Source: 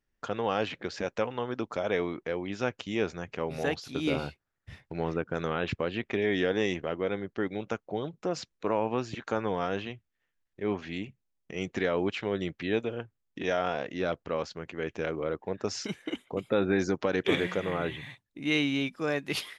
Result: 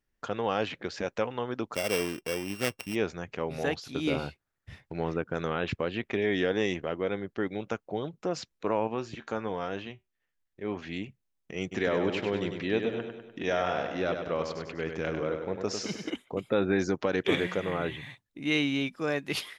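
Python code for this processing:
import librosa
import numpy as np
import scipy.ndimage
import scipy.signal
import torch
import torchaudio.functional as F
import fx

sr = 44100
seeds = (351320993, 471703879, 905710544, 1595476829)

y = fx.sample_sort(x, sr, block=16, at=(1.74, 2.94), fade=0.02)
y = fx.comb_fb(y, sr, f0_hz=75.0, decay_s=0.19, harmonics='all', damping=0.0, mix_pct=50, at=(8.87, 10.77))
y = fx.echo_feedback(y, sr, ms=99, feedback_pct=53, wet_db=-6.5, at=(11.71, 16.09), fade=0.02)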